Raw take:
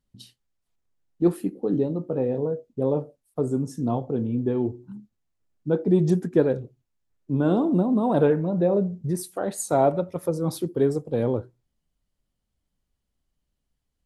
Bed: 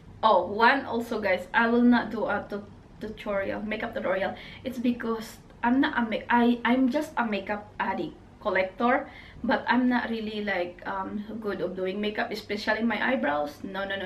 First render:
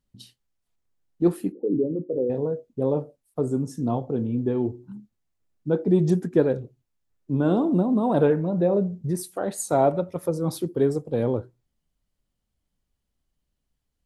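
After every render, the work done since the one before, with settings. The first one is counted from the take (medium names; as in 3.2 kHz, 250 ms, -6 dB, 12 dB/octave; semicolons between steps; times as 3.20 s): 1.52–2.30 s: resonances exaggerated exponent 2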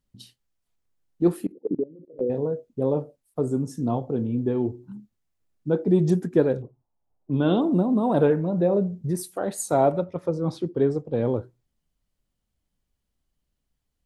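1.46–2.21 s: level held to a coarse grid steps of 23 dB; 6.62–7.61 s: touch-sensitive low-pass 780–3300 Hz up, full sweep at -23.5 dBFS; 10.04–11.25 s: distance through air 120 m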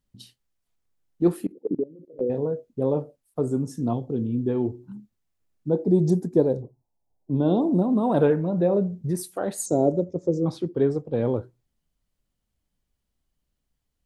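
3.93–4.49 s: high-order bell 1.1 kHz -8.5 dB 2.4 oct; 5.70–7.82 s: high-order bell 2 kHz -14 dB; 9.66–10.46 s: FFT filter 130 Hz 0 dB, 370 Hz +6 dB, 530 Hz 0 dB, 1.2 kHz -20 dB, 2.8 kHz -23 dB, 7 kHz +11 dB, 11 kHz -23 dB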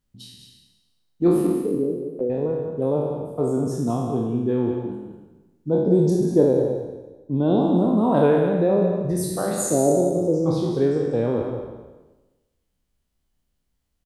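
spectral sustain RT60 1.17 s; delay 193 ms -8 dB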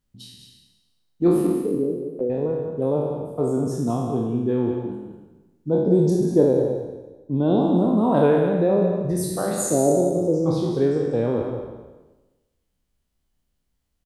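no audible change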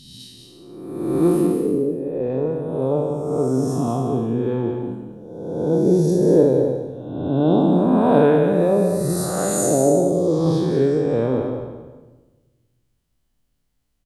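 reverse spectral sustain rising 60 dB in 1.29 s; simulated room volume 870 m³, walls mixed, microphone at 0.35 m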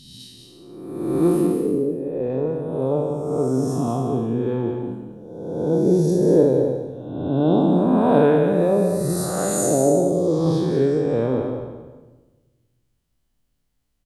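trim -1 dB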